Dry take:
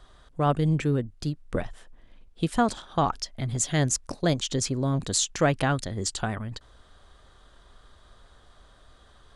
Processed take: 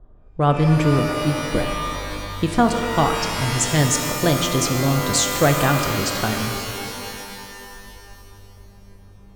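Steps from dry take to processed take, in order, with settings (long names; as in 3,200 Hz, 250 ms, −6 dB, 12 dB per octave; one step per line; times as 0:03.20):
low-pass that shuts in the quiet parts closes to 430 Hz, open at −23 dBFS
reverb with rising layers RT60 2.7 s, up +12 semitones, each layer −2 dB, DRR 5.5 dB
level +5 dB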